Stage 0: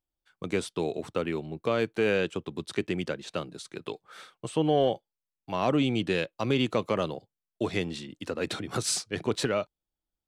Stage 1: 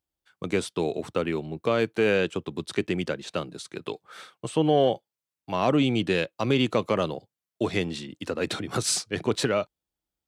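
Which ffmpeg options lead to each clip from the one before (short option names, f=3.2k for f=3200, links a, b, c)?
-af "highpass=50,volume=3dB"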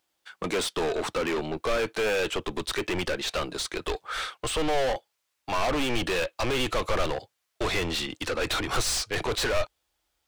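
-filter_complex "[0:a]asplit=2[a][b];[b]highpass=f=720:p=1,volume=31dB,asoftclip=type=tanh:threshold=-10.5dB[c];[a][c]amix=inputs=2:normalize=0,lowpass=f=5.8k:p=1,volume=-6dB,asubboost=boost=11:cutoff=56,volume=-8.5dB"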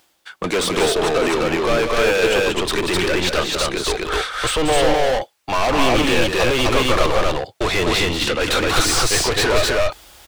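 -af "aecho=1:1:186.6|256.6:0.447|0.891,areverse,acompressor=mode=upward:threshold=-34dB:ratio=2.5,areverse,volume=7.5dB"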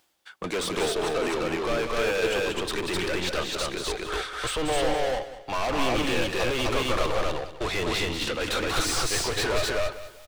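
-af "aecho=1:1:196|392|588:0.2|0.0619|0.0192,volume=-9dB"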